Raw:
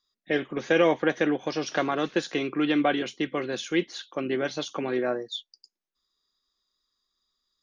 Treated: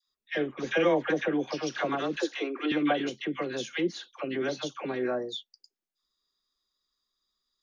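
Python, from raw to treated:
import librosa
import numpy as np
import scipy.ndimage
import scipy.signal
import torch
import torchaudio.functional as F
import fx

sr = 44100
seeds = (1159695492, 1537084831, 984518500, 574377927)

y = fx.dispersion(x, sr, late='lows', ms=77.0, hz=860.0)
y = fx.steep_highpass(y, sr, hz=270.0, slope=36, at=(2.17, 2.72))
y = y * 10.0 ** (-3.0 / 20.0)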